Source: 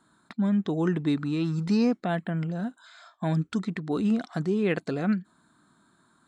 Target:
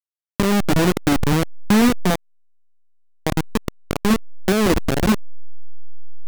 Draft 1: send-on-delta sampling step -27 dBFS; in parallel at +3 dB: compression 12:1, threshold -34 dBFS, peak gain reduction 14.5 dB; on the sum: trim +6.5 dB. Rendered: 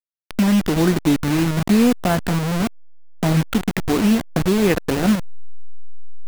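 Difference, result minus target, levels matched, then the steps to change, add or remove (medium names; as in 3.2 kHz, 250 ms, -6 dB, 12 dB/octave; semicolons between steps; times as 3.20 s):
send-on-delta sampling: distortion -10 dB
change: send-on-delta sampling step -19.5 dBFS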